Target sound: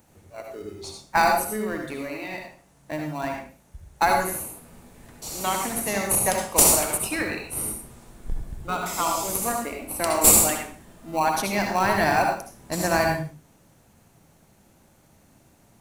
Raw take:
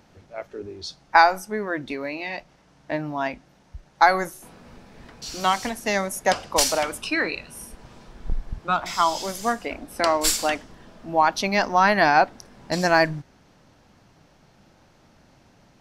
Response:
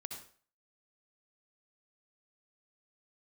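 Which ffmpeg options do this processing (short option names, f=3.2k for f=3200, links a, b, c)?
-filter_complex "[0:a]aexciter=amount=7.2:drive=4.7:freq=7.1k,asplit=2[a][b];[b]acrusher=samples=26:mix=1:aa=0.000001,volume=-9dB[c];[a][c]amix=inputs=2:normalize=0[d];[1:a]atrim=start_sample=2205,afade=t=out:st=0.34:d=0.01,atrim=end_sample=15435[e];[d][e]afir=irnorm=-1:irlink=0,volume=-1.5dB"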